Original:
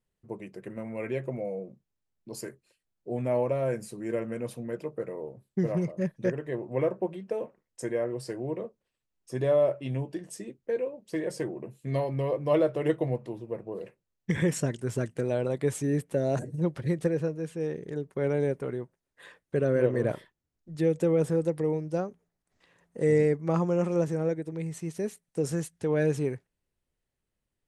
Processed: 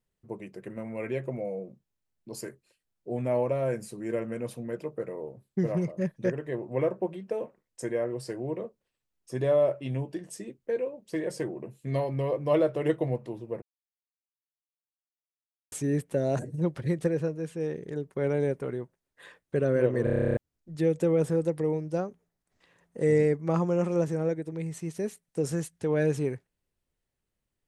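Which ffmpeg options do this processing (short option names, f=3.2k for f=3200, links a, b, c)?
-filter_complex "[0:a]asplit=14[a][b][c][d][e][f][g][h][i][j][k][l][m][n];[a]atrim=end=13.62,asetpts=PTS-STARTPTS,afade=t=out:st=13.616:d=0.004:c=hsin[o];[b]atrim=start=13.62:end=15.72,asetpts=PTS-STARTPTS,volume=0[p];[c]atrim=start=15.72:end=20.072,asetpts=PTS-STARTPTS,afade=t=in:d=0.004:c=hsin[q];[d]atrim=start=20.038:end=20.072[r];[e]atrim=start=20.038:end=20.072[s];[f]atrim=start=20.038:end=20.072[t];[g]atrim=start=20.038:end=20.072[u];[h]atrim=start=20.038:end=20.072[v];[i]atrim=start=20.038:end=20.072[w];[j]atrim=start=20.038:end=20.072[x];[k]atrim=start=20.038:end=20.072[y];[l]atrim=start=20.038:end=20.072[z];[m]atrim=start=20.038:end=20.072[aa];[n]atrim=start=20.368[ab];[o][p][q]concat=n=3:v=0:a=1[ac];[ac][r]acrossfade=d=0.004:c1=hsin:c2=hsin[ad];[ad][s]acrossfade=d=0.004:c1=hsin:c2=hsin[ae];[ae][t]acrossfade=d=0.004:c1=hsin:c2=hsin[af];[af][u]acrossfade=d=0.004:c1=hsin:c2=hsin[ag];[ag][v]acrossfade=d=0.004:c1=hsin:c2=hsin[ah];[ah][w]acrossfade=d=0.004:c1=hsin:c2=hsin[ai];[ai][x]acrossfade=d=0.004:c1=hsin:c2=hsin[aj];[aj][y]acrossfade=d=0.004:c1=hsin:c2=hsin[ak];[ak][z]acrossfade=d=0.004:c1=hsin:c2=hsin[al];[al][aa]acrossfade=d=0.004:c1=hsin:c2=hsin[am];[am][ab]acrossfade=d=0.004:c1=hsin:c2=hsin"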